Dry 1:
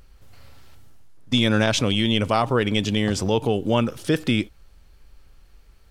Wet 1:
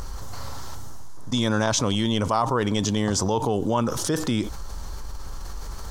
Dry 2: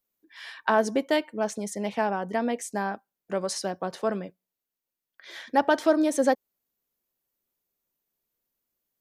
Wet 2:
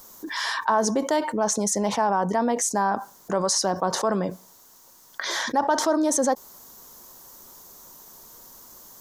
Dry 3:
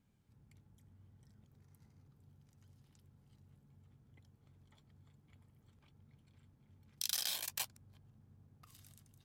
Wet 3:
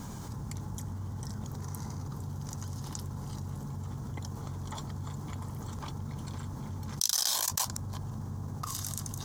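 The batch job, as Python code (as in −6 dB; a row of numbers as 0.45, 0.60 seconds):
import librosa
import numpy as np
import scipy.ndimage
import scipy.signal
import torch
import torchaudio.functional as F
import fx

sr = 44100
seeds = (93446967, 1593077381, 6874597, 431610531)

y = fx.graphic_eq_15(x, sr, hz=(1000, 2500, 6300), db=(10, -10, 9))
y = fx.env_flatten(y, sr, amount_pct=70)
y = librosa.util.normalize(y) * 10.0 ** (-9 / 20.0)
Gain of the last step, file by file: −7.0, −6.5, +2.0 decibels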